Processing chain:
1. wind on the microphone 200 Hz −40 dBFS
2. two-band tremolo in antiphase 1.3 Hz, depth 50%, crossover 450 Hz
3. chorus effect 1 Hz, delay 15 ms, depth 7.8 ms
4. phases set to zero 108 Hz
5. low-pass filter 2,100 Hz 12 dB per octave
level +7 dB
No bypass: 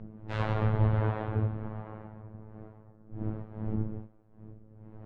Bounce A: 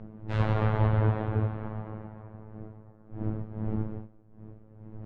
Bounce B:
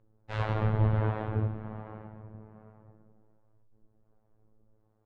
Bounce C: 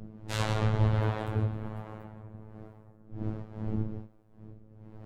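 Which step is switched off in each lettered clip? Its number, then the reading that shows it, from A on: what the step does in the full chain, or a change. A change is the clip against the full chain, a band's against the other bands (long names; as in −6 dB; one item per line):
2, change in integrated loudness +2.0 LU
1, 250 Hz band −2.5 dB
5, 2 kHz band +2.0 dB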